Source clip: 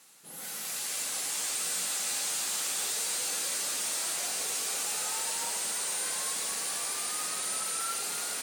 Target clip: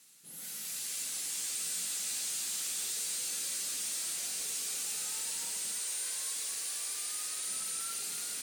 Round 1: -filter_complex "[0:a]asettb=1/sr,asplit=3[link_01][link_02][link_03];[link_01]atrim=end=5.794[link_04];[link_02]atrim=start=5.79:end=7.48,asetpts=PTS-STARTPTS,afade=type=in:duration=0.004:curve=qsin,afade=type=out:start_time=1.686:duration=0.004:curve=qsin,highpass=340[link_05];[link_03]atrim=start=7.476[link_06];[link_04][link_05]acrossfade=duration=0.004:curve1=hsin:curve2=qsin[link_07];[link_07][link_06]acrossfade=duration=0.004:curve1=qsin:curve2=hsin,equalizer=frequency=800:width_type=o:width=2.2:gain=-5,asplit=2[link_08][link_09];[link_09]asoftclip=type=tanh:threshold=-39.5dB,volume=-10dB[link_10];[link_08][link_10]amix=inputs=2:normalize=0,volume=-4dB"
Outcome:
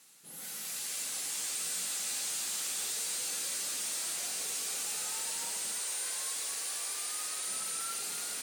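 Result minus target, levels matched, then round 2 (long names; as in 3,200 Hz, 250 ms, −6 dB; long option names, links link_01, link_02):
1,000 Hz band +5.5 dB
-filter_complex "[0:a]asettb=1/sr,asplit=3[link_01][link_02][link_03];[link_01]atrim=end=5.794[link_04];[link_02]atrim=start=5.79:end=7.48,asetpts=PTS-STARTPTS,afade=type=in:duration=0.004:curve=qsin,afade=type=out:start_time=1.686:duration=0.004:curve=qsin,highpass=340[link_05];[link_03]atrim=start=7.476[link_06];[link_04][link_05]acrossfade=duration=0.004:curve1=hsin:curve2=qsin[link_07];[link_07][link_06]acrossfade=duration=0.004:curve1=qsin:curve2=hsin,equalizer=frequency=800:width_type=o:width=2.2:gain=-12.5,asplit=2[link_08][link_09];[link_09]asoftclip=type=tanh:threshold=-39.5dB,volume=-10dB[link_10];[link_08][link_10]amix=inputs=2:normalize=0,volume=-4dB"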